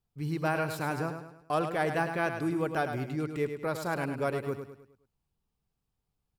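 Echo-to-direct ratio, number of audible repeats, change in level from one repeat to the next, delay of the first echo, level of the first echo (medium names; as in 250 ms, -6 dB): -7.0 dB, 4, -7.5 dB, 104 ms, -8.0 dB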